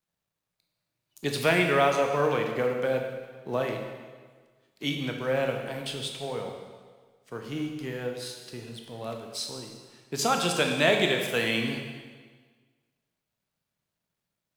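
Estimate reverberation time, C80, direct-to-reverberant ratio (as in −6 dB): 1.5 s, 6.0 dB, 2.5 dB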